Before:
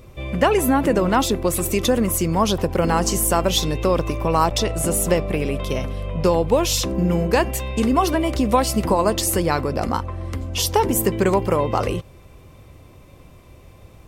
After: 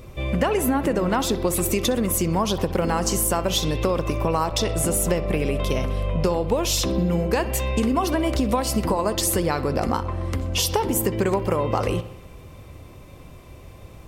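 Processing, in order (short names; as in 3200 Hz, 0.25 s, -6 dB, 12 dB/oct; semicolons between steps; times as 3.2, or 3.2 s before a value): compressor, threshold -21 dBFS, peak gain reduction 9.5 dB; on a send: analogue delay 63 ms, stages 2048, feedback 63%, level -16 dB; on the sum: gain +2.5 dB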